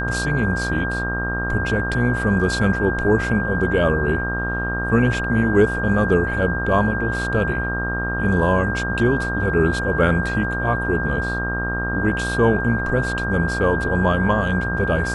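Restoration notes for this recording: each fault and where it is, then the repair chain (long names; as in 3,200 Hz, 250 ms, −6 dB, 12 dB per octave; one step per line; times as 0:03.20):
mains buzz 60 Hz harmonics 27 −26 dBFS
whistle 1,600 Hz −24 dBFS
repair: hum removal 60 Hz, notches 27
notch filter 1,600 Hz, Q 30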